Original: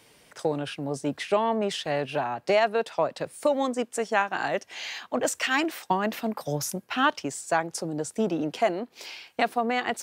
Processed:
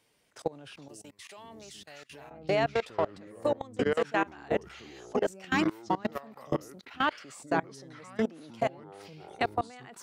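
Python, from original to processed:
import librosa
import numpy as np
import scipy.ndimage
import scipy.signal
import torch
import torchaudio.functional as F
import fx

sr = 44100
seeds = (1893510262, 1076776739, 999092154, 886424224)

y = fx.echo_pitch(x, sr, ms=269, semitones=-6, count=2, db_per_echo=-3.0)
y = fx.pre_emphasis(y, sr, coefficient=0.9, at=(0.88, 2.31))
y = fx.level_steps(y, sr, step_db=23)
y = y * 10.0 ** (-2.0 / 20.0)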